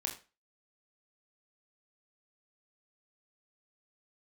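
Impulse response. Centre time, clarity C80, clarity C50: 18 ms, 14.5 dB, 10.0 dB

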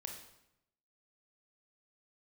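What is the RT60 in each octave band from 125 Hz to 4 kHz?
1.0 s, 0.95 s, 0.85 s, 0.80 s, 0.75 s, 0.70 s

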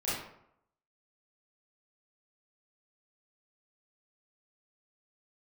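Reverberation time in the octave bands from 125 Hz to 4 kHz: 0.70 s, 0.70 s, 0.75 s, 0.75 s, 0.60 s, 0.45 s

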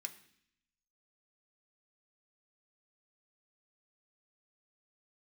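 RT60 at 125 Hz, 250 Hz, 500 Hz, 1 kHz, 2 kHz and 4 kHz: 0.95 s, 0.95 s, 0.65 s, 0.65 s, 0.80 s, 0.85 s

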